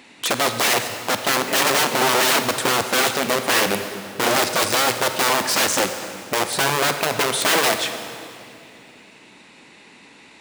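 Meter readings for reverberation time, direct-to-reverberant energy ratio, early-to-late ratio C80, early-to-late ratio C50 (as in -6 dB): 2.6 s, 7.5 dB, 9.0 dB, 8.0 dB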